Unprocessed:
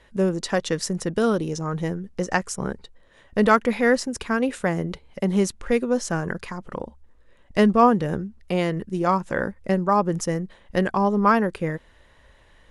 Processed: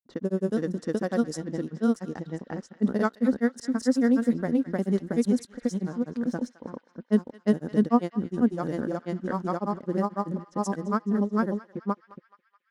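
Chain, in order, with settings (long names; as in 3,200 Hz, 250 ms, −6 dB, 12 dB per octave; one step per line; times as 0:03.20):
high-pass filter 140 Hz 6 dB per octave
dead-zone distortion −46 dBFS
graphic EQ with 15 bands 250 Hz +12 dB, 1,000 Hz −3 dB, 2,500 Hz −11 dB
granular cloud 100 ms, grains 20 per second, spray 667 ms, pitch spread up and down by 0 semitones
low-pass that shuts in the quiet parts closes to 1,000 Hz, open at −18.5 dBFS
on a send: feedback echo with a band-pass in the loop 213 ms, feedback 74%, band-pass 2,600 Hz, level −14 dB
on the sum: level −6 dB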